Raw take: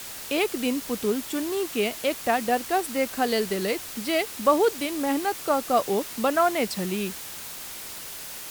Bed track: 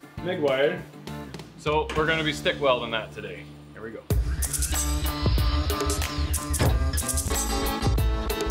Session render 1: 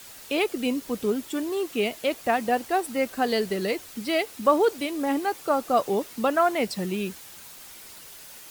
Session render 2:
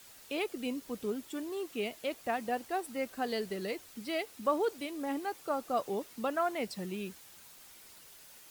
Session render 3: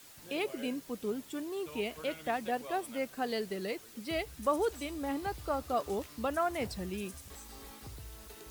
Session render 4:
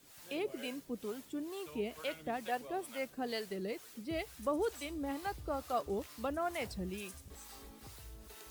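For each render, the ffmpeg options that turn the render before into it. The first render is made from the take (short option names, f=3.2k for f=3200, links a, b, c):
-af "afftdn=nr=8:nf=-38"
-af "volume=-10dB"
-filter_complex "[1:a]volume=-24.5dB[a];[0:a][a]amix=inputs=2:normalize=0"
-filter_complex "[0:a]acrossover=split=560[a][b];[a]aeval=exprs='val(0)*(1-0.7/2+0.7/2*cos(2*PI*2.2*n/s))':c=same[c];[b]aeval=exprs='val(0)*(1-0.7/2-0.7/2*cos(2*PI*2.2*n/s))':c=same[d];[c][d]amix=inputs=2:normalize=0"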